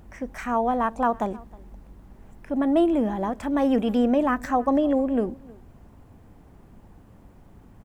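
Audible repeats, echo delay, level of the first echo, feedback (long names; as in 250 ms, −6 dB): 1, 314 ms, −23.5 dB, repeats not evenly spaced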